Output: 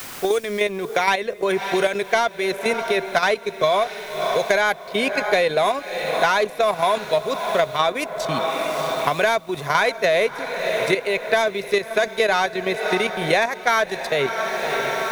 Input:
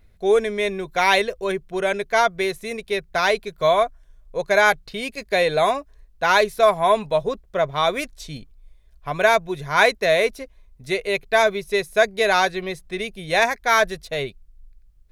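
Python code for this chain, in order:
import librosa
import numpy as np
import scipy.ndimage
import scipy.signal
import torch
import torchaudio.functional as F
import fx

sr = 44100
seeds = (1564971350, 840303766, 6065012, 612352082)

p1 = fx.fade_in_head(x, sr, length_s=1.67)
p2 = fx.highpass(p1, sr, hz=200.0, slope=6)
p3 = fx.level_steps(p2, sr, step_db=10)
p4 = fx.leveller(p3, sr, passes=1)
p5 = p4 + fx.echo_diffused(p4, sr, ms=608, feedback_pct=51, wet_db=-15, dry=0)
p6 = fx.quant_dither(p5, sr, seeds[0], bits=10, dither='triangular')
y = fx.band_squash(p6, sr, depth_pct=100)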